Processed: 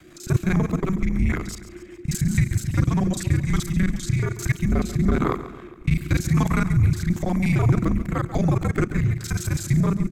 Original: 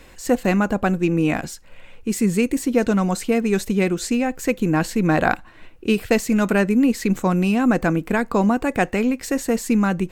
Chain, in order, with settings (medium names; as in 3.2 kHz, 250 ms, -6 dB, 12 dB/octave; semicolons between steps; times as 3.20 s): time reversed locally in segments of 33 ms; frequency shift -370 Hz; rotary cabinet horn 5 Hz, later 1 Hz, at 2.82 s; on a send: feedback delay 139 ms, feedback 52%, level -14 dB